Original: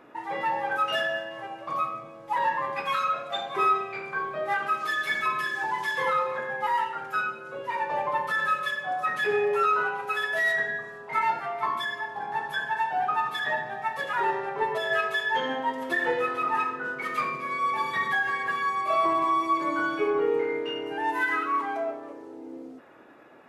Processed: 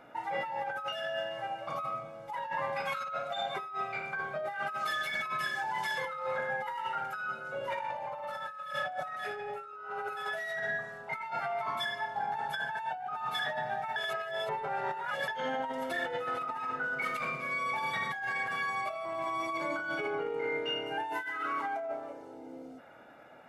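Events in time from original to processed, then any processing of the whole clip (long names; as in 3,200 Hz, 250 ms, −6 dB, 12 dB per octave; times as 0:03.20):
0:07.56–0:10.22: thrown reverb, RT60 1 s, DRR −1.5 dB
0:13.96–0:15.28: reverse
whole clip: comb filter 1.4 ms, depth 58%; compressor whose output falls as the input rises −30 dBFS, ratio −1; level −5.5 dB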